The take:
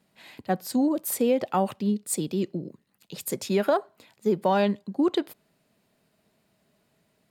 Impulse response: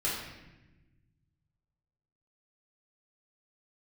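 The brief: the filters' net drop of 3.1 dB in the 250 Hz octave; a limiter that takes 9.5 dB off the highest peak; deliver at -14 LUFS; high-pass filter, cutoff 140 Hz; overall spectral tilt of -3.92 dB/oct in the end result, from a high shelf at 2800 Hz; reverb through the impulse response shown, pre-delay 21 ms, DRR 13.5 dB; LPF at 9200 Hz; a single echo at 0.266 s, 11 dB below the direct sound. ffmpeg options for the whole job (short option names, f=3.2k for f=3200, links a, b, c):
-filter_complex "[0:a]highpass=140,lowpass=9.2k,equalizer=f=250:t=o:g=-3.5,highshelf=f=2.8k:g=7,alimiter=limit=-19dB:level=0:latency=1,aecho=1:1:266:0.282,asplit=2[a][b];[1:a]atrim=start_sample=2205,adelay=21[c];[b][c]afir=irnorm=-1:irlink=0,volume=-21dB[d];[a][d]amix=inputs=2:normalize=0,volume=16dB"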